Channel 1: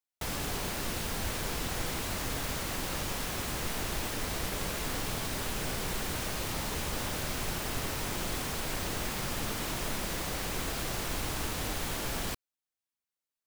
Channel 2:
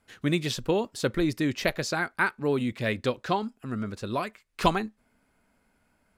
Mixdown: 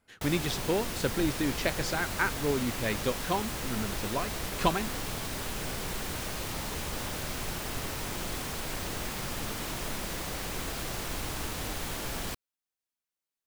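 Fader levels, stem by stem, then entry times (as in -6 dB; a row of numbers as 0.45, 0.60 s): -1.0, -3.5 dB; 0.00, 0.00 s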